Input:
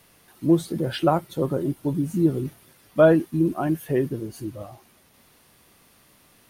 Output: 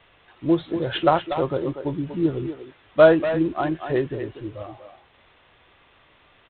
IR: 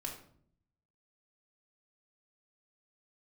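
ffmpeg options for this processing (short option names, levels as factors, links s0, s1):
-filter_complex "[0:a]equalizer=f=200:w=1:g=-12,asplit=2[s0][s1];[s1]adelay=240,highpass=300,lowpass=3400,asoftclip=type=hard:threshold=0.15,volume=0.398[s2];[s0][s2]amix=inputs=2:normalize=0,volume=1.68" -ar 8000 -c:a adpcm_ima_wav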